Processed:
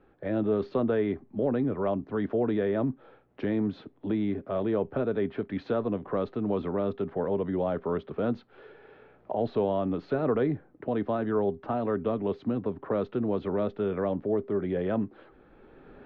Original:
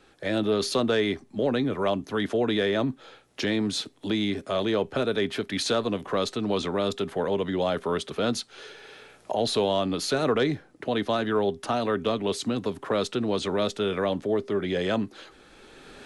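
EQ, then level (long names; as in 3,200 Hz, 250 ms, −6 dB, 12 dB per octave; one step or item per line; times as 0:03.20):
high-frequency loss of the air 190 metres
head-to-tape spacing loss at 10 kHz 31 dB
high-shelf EQ 3,100 Hz −11.5 dB
0.0 dB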